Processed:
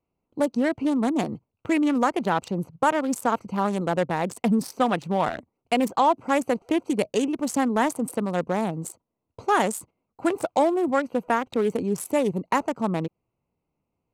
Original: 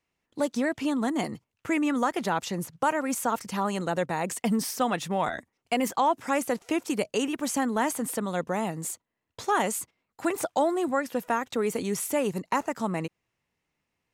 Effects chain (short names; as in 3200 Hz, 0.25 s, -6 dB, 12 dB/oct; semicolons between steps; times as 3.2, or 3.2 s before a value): Wiener smoothing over 25 samples; gain +4.5 dB